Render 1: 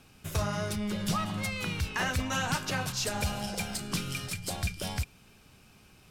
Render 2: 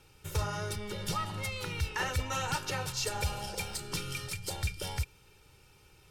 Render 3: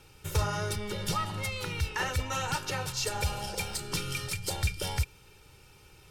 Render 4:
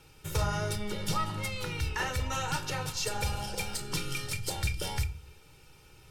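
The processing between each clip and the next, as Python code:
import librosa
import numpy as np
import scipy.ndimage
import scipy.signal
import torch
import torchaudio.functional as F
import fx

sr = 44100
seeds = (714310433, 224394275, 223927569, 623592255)

y1 = x + 0.75 * np.pad(x, (int(2.2 * sr / 1000.0), 0))[:len(x)]
y1 = F.gain(torch.from_numpy(y1), -4.0).numpy()
y2 = fx.rider(y1, sr, range_db=10, speed_s=2.0)
y2 = F.gain(torch.from_numpy(y2), 2.5).numpy()
y3 = fx.room_shoebox(y2, sr, seeds[0], volume_m3=250.0, walls='furnished', distance_m=0.61)
y3 = F.gain(torch.from_numpy(y3), -1.5).numpy()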